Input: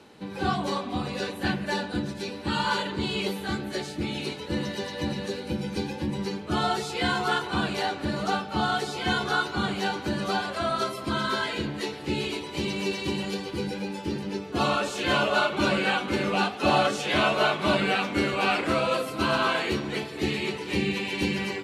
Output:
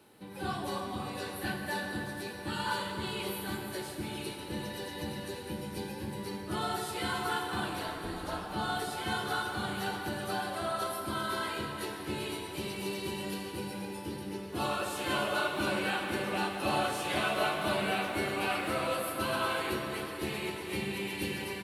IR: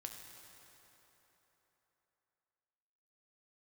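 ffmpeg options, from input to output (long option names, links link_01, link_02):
-filter_complex "[0:a]asplit=2[link_01][link_02];[link_02]adelay=180,highpass=300,lowpass=3400,asoftclip=type=hard:threshold=-20dB,volume=-16dB[link_03];[link_01][link_03]amix=inputs=2:normalize=0,asplit=3[link_04][link_05][link_06];[link_04]afade=type=out:start_time=7.69:duration=0.02[link_07];[link_05]aeval=exprs='val(0)*sin(2*PI*120*n/s)':channel_layout=same,afade=type=in:start_time=7.69:duration=0.02,afade=type=out:start_time=8.4:duration=0.02[link_08];[link_06]afade=type=in:start_time=8.4:duration=0.02[link_09];[link_07][link_08][link_09]amix=inputs=3:normalize=0,aexciter=amount=5:drive=7:freq=9100[link_10];[1:a]atrim=start_sample=2205[link_11];[link_10][link_11]afir=irnorm=-1:irlink=0,volume=-3.5dB"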